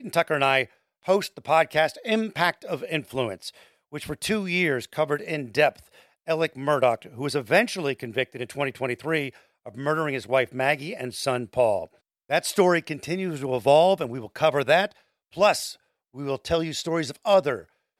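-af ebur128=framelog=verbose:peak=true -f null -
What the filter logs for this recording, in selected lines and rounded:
Integrated loudness:
  I:         -24.6 LUFS
  Threshold: -35.1 LUFS
Loudness range:
  LRA:         4.1 LU
  Threshold: -45.2 LUFS
  LRA low:   -27.2 LUFS
  LRA high:  -23.1 LUFS
True peak:
  Peak:       -6.3 dBFS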